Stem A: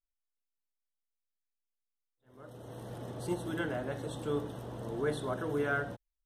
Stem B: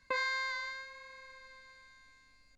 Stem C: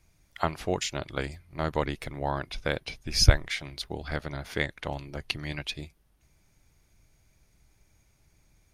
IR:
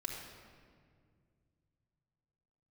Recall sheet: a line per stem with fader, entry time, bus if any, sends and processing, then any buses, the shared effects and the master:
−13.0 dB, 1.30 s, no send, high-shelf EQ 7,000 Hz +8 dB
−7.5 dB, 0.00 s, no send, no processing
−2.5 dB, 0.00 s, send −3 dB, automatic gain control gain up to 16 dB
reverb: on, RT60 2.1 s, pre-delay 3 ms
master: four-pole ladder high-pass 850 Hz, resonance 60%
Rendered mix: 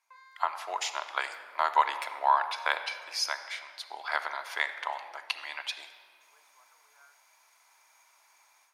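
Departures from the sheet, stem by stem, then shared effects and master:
stem A −13.0 dB → −20.0 dB
stem B −7.5 dB → −16.0 dB

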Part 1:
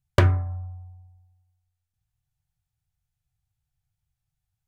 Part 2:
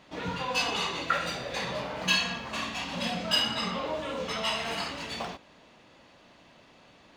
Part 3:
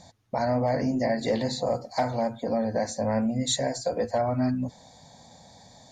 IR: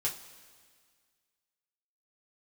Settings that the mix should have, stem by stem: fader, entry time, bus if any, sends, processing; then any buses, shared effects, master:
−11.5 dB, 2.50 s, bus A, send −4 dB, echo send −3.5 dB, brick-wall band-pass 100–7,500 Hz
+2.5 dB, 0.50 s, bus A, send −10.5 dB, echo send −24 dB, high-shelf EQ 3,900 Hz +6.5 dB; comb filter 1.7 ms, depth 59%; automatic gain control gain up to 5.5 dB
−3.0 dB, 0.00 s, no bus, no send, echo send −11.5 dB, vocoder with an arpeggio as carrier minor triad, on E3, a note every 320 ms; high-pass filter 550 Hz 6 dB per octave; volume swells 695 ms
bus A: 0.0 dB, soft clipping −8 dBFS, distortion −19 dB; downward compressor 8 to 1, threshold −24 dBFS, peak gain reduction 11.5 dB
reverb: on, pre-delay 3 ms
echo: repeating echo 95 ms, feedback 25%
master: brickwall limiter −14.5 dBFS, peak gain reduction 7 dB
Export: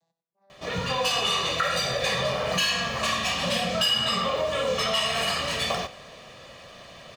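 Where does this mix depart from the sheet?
stem 1: muted
stem 3 −3.0 dB → −15.0 dB
reverb return −7.0 dB

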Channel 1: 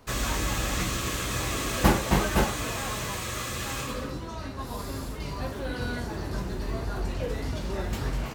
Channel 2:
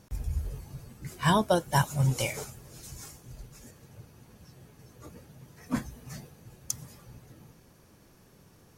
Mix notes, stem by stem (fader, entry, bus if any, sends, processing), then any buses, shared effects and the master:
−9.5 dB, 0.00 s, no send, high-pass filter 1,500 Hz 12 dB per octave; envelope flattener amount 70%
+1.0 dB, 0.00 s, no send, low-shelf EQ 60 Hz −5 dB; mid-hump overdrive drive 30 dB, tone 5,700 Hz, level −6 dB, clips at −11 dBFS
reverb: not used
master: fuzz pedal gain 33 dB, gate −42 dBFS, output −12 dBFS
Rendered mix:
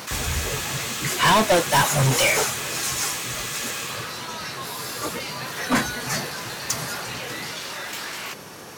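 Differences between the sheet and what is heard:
stem 1 −9.5 dB → −1.5 dB
master: missing fuzz pedal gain 33 dB, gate −42 dBFS, output −12 dBFS

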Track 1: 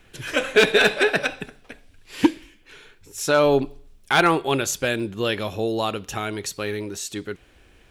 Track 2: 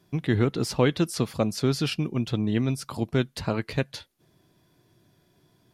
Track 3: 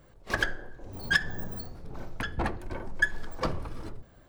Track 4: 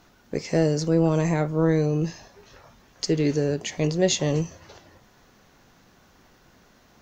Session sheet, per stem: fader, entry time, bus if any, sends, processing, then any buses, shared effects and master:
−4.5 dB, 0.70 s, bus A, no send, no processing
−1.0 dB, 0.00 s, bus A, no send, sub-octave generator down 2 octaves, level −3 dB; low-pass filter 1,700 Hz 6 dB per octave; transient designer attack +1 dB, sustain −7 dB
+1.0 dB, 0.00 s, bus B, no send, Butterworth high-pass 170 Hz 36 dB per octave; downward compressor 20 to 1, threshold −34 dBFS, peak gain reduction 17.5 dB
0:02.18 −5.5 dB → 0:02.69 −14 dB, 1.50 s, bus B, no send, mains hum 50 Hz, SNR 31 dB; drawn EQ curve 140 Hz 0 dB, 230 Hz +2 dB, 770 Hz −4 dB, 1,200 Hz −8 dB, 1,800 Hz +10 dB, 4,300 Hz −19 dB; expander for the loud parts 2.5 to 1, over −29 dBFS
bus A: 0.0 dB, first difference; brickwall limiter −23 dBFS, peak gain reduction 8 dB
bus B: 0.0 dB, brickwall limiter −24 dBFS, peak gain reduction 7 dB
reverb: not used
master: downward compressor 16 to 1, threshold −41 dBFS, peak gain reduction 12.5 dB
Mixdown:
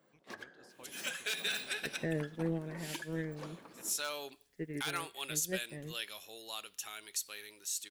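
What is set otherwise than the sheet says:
stem 2 −1.0 dB → −11.5 dB
stem 3 +1.0 dB → −10.0 dB
master: missing downward compressor 16 to 1, threshold −41 dBFS, peak gain reduction 12.5 dB

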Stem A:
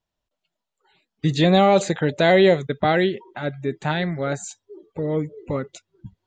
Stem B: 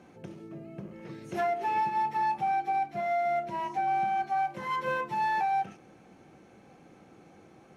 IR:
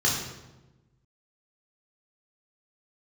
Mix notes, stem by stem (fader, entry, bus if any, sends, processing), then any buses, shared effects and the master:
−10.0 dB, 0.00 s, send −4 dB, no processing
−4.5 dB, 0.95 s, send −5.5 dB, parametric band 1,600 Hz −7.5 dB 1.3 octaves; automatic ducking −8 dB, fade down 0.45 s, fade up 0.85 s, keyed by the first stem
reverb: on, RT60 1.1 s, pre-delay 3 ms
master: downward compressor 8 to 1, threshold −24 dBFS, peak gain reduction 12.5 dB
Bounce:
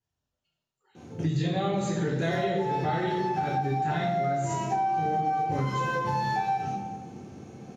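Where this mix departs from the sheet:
stem A −10.0 dB → −18.5 dB
reverb return +6.5 dB

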